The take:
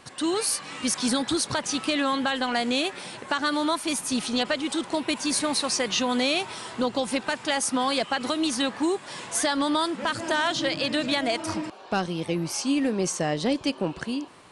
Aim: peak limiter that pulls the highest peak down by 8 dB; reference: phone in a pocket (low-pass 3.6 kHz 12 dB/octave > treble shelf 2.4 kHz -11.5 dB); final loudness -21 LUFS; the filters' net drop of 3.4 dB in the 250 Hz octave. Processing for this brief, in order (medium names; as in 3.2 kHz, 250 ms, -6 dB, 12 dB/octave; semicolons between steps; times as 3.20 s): peaking EQ 250 Hz -4 dB; peak limiter -22 dBFS; low-pass 3.6 kHz 12 dB/octave; treble shelf 2.4 kHz -11.5 dB; trim +13 dB